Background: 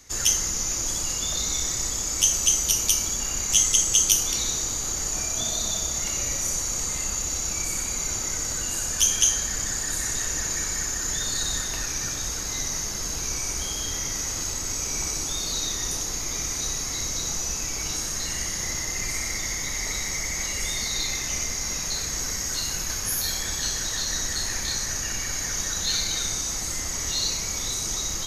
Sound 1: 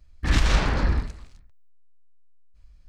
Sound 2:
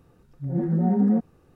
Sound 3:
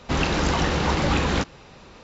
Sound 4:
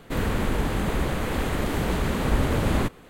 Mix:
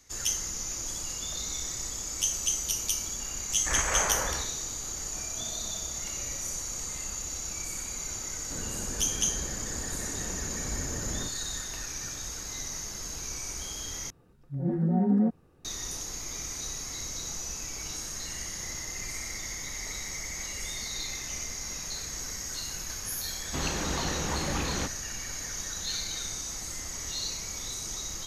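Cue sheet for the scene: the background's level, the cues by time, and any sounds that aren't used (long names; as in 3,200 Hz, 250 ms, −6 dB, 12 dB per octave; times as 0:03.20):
background −8 dB
0:03.42: mix in 1 −16 dB + flat-topped bell 1,000 Hz +15 dB 2.9 octaves
0:08.40: mix in 4 −13.5 dB + low-pass filter 1,000 Hz 6 dB per octave
0:14.10: overwrite with 2 −3.5 dB
0:23.44: mix in 3 −10 dB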